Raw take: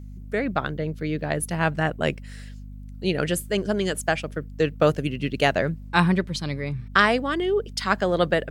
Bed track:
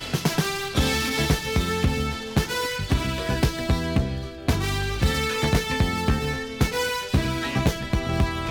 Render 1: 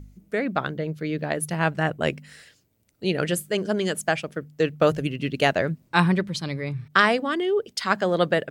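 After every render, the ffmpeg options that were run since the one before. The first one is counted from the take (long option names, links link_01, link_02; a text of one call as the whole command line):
ffmpeg -i in.wav -af "bandreject=frequency=50:width_type=h:width=4,bandreject=frequency=100:width_type=h:width=4,bandreject=frequency=150:width_type=h:width=4,bandreject=frequency=200:width_type=h:width=4,bandreject=frequency=250:width_type=h:width=4" out.wav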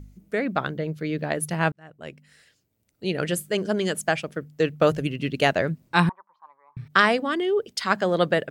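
ffmpeg -i in.wav -filter_complex "[0:a]asettb=1/sr,asplit=3[link_01][link_02][link_03];[link_01]atrim=end=6.094[link_04];[link_02]atrim=start=6.09:end=6.77,asetpts=PTS-STARTPTS,afade=type=in:duration=0.004:curve=qsin,afade=type=out:start_time=0.676:duration=0.004:curve=qsin,asuperpass=centerf=980:order=4:qfactor=4.1[link_05];[link_03]atrim=start=6.766[link_06];[link_04][link_05]acrossfade=duration=0.004:curve1=hsin:curve2=qsin[link_07];[link_07][link_06]acrossfade=duration=0.004:curve1=qsin:curve2=hsin,asplit=2[link_08][link_09];[link_08]atrim=end=1.72,asetpts=PTS-STARTPTS,afade=type=out:start_time=1.716:duration=0.004:curve=hsin[link_10];[link_09]atrim=start=1.72,asetpts=PTS-STARTPTS,afade=type=in:duration=1.8[link_11];[link_10][link_11]concat=n=2:v=0:a=1" out.wav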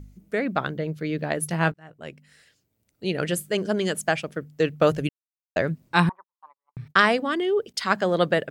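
ffmpeg -i in.wav -filter_complex "[0:a]asettb=1/sr,asplit=3[link_01][link_02][link_03];[link_01]atrim=end=1.414[link_04];[link_02]atrim=start=1.41:end=2.07,asetpts=PTS-STARTPTS,afade=type=in:duration=0.004:curve=qsin,afade=type=out:start_time=0.656:duration=0.004:curve=qsin,asplit=2[link_05][link_06];[link_06]adelay=18,volume=-12.5dB[link_07];[link_05][link_07]amix=inputs=2:normalize=0,atrim=end_sample=29106[link_08];[link_03]atrim=start=2.066[link_09];[link_04][link_08]acrossfade=duration=0.004:curve1=hsin:curve2=qsin[link_10];[link_10][link_09]acrossfade=duration=0.004:curve1=qsin:curve2=hsin,asettb=1/sr,asplit=3[link_11][link_12][link_13];[link_11]atrim=end=6.094[link_14];[link_12]atrim=start=6.09:end=7.74,asetpts=PTS-STARTPTS,afade=type=in:duration=0.004:curve=qsin,afade=type=out:start_time=1.646:duration=0.004:curve=qsin,agate=range=-36dB:threshold=-53dB:ratio=16:release=100:detection=peak[link_15];[link_13]atrim=start=7.736[link_16];[link_14][link_15]acrossfade=duration=0.004:curve1=hsin:curve2=qsin[link_17];[link_17][link_16]acrossfade=duration=0.004:curve1=qsin:curve2=hsin,asplit=3[link_18][link_19][link_20];[link_18]atrim=end=5.09,asetpts=PTS-STARTPTS,afade=type=out:start_time=5.086:duration=0.004:curve=hsin[link_21];[link_19]atrim=start=5.09:end=5.56,asetpts=PTS-STARTPTS,volume=0[link_22];[link_20]atrim=start=5.56,asetpts=PTS-STARTPTS,afade=type=in:duration=0.004:curve=hsin[link_23];[link_21][link_22][link_23]concat=n=3:v=0:a=1" out.wav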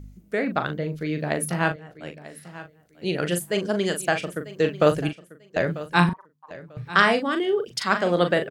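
ffmpeg -i in.wav -filter_complex "[0:a]asplit=2[link_01][link_02];[link_02]adelay=40,volume=-8dB[link_03];[link_01][link_03]amix=inputs=2:normalize=0,aecho=1:1:943|1886:0.15|0.0314" out.wav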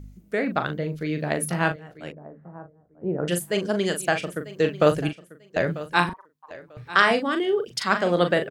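ffmpeg -i in.wav -filter_complex "[0:a]asettb=1/sr,asplit=3[link_01][link_02][link_03];[link_01]atrim=end=2.124[link_04];[link_02]atrim=start=2.12:end=3.28,asetpts=PTS-STARTPTS,afade=type=in:duration=0.004:curve=qsin,afade=type=out:start_time=1.156:duration=0.004:curve=qsin,lowpass=frequency=1100:width=0.5412,lowpass=frequency=1100:width=1.3066[link_05];[link_03]atrim=start=3.276[link_06];[link_04][link_05]acrossfade=duration=0.004:curve1=hsin:curve2=qsin[link_07];[link_07][link_06]acrossfade=duration=0.004:curve1=qsin:curve2=hsin,asettb=1/sr,asplit=3[link_08][link_09][link_10];[link_08]atrim=end=5.944[link_11];[link_09]atrim=start=5.94:end=7.11,asetpts=PTS-STARTPTS,afade=type=in:duration=0.004:curve=qsin,afade=type=out:start_time=1.166:duration=0.004:curve=qsin,equalizer=frequency=160:width=1.5:gain=-10.5[link_12];[link_10]atrim=start=7.106[link_13];[link_11][link_12]acrossfade=duration=0.004:curve1=hsin:curve2=qsin[link_14];[link_14][link_13]acrossfade=duration=0.004:curve1=qsin:curve2=hsin" out.wav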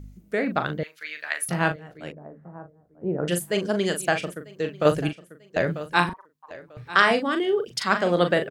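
ffmpeg -i in.wav -filter_complex "[0:a]asettb=1/sr,asplit=3[link_01][link_02][link_03];[link_01]atrim=end=0.834[link_04];[link_02]atrim=start=0.83:end=1.49,asetpts=PTS-STARTPTS,afade=type=in:duration=0.004:curve=qsin,afade=type=out:start_time=0.656:duration=0.004:curve=qsin,highpass=frequency=1600:width_type=q:width=1.6[link_05];[link_03]atrim=start=1.486[link_06];[link_04][link_05]acrossfade=duration=0.004:curve1=hsin:curve2=qsin[link_07];[link_07][link_06]acrossfade=duration=0.004:curve1=qsin:curve2=hsin,asplit=3[link_08][link_09][link_10];[link_08]atrim=end=4.342[link_11];[link_09]atrim=start=4.338:end=4.852,asetpts=PTS-STARTPTS,volume=-6dB[link_12];[link_10]atrim=start=4.848[link_13];[link_11][link_12]acrossfade=duration=0.004:curve1=hsin:curve2=hsin[link_14];[link_14][link_13]acrossfade=duration=0.004:curve1=hsin:curve2=hsin" out.wav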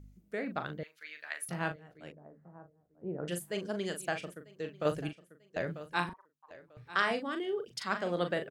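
ffmpeg -i in.wav -af "volume=-11.5dB" out.wav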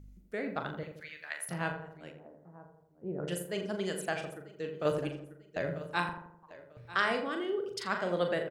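ffmpeg -i in.wav -filter_complex "[0:a]asplit=2[link_01][link_02];[link_02]adelay=42,volume=-13dB[link_03];[link_01][link_03]amix=inputs=2:normalize=0,asplit=2[link_04][link_05];[link_05]adelay=84,lowpass=frequency=1200:poles=1,volume=-6dB,asplit=2[link_06][link_07];[link_07]adelay=84,lowpass=frequency=1200:poles=1,volume=0.54,asplit=2[link_08][link_09];[link_09]adelay=84,lowpass=frequency=1200:poles=1,volume=0.54,asplit=2[link_10][link_11];[link_11]adelay=84,lowpass=frequency=1200:poles=1,volume=0.54,asplit=2[link_12][link_13];[link_13]adelay=84,lowpass=frequency=1200:poles=1,volume=0.54,asplit=2[link_14][link_15];[link_15]adelay=84,lowpass=frequency=1200:poles=1,volume=0.54,asplit=2[link_16][link_17];[link_17]adelay=84,lowpass=frequency=1200:poles=1,volume=0.54[link_18];[link_04][link_06][link_08][link_10][link_12][link_14][link_16][link_18]amix=inputs=8:normalize=0" out.wav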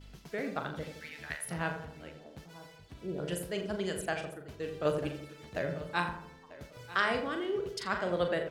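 ffmpeg -i in.wav -i bed.wav -filter_complex "[1:a]volume=-28.5dB[link_01];[0:a][link_01]amix=inputs=2:normalize=0" out.wav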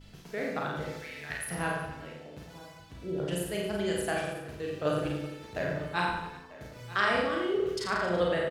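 ffmpeg -i in.wav -filter_complex "[0:a]asplit=2[link_01][link_02];[link_02]adelay=34,volume=-6dB[link_03];[link_01][link_03]amix=inputs=2:normalize=0,asplit=2[link_04][link_05];[link_05]aecho=0:1:50|110|182|268.4|372.1:0.631|0.398|0.251|0.158|0.1[link_06];[link_04][link_06]amix=inputs=2:normalize=0" out.wav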